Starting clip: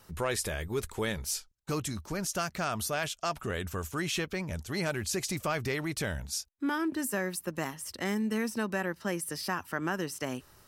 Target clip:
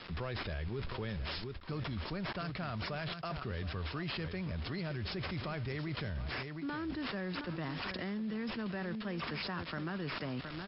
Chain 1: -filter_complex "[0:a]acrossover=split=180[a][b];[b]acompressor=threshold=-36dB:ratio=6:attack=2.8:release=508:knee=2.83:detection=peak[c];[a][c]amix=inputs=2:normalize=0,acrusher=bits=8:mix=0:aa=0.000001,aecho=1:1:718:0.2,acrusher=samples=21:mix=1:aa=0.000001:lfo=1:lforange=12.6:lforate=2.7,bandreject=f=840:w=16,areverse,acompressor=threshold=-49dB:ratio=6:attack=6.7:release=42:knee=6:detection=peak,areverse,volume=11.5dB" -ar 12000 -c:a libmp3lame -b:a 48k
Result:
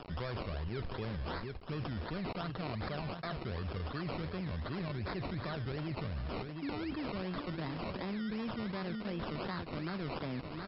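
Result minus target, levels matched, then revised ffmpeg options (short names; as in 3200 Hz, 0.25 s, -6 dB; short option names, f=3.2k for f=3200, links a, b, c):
decimation with a swept rate: distortion +5 dB
-filter_complex "[0:a]acrossover=split=180[a][b];[b]acompressor=threshold=-36dB:ratio=6:attack=2.8:release=508:knee=2.83:detection=peak[c];[a][c]amix=inputs=2:normalize=0,acrusher=bits=8:mix=0:aa=0.000001,aecho=1:1:718:0.2,acrusher=samples=5:mix=1:aa=0.000001:lfo=1:lforange=3:lforate=2.7,bandreject=f=840:w=16,areverse,acompressor=threshold=-49dB:ratio=6:attack=6.7:release=42:knee=6:detection=peak,areverse,volume=11.5dB" -ar 12000 -c:a libmp3lame -b:a 48k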